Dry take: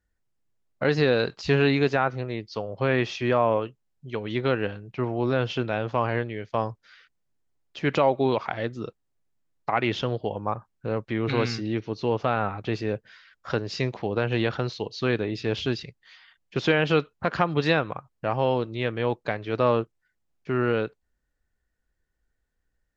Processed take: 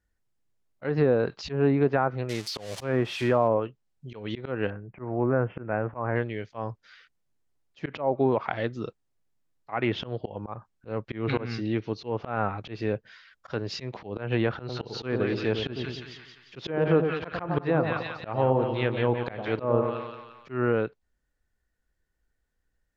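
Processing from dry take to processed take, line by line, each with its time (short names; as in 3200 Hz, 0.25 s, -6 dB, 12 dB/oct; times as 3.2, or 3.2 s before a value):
2.29–3.48 switching spikes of -20.5 dBFS
4.7–6.16 inverse Chebyshev low-pass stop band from 3800 Hz
14.57–20.52 split-band echo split 1000 Hz, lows 99 ms, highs 0.175 s, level -6.5 dB
whole clip: treble ducked by the level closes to 1000 Hz, closed at -17 dBFS; auto swell 0.156 s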